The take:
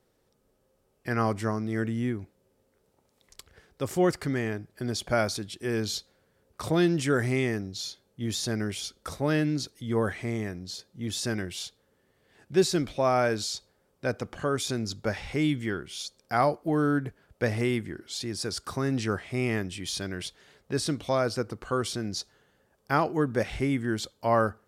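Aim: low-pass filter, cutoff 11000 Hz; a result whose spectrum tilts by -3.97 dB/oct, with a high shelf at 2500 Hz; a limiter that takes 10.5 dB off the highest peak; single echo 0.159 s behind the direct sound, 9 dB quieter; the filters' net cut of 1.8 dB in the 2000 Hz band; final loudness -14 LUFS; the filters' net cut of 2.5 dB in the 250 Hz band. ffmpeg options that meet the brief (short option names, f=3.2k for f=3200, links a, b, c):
-af "lowpass=11k,equalizer=f=250:t=o:g=-3.5,equalizer=f=2k:t=o:g=-6,highshelf=f=2.5k:g=8,alimiter=limit=-21dB:level=0:latency=1,aecho=1:1:159:0.355,volume=17.5dB"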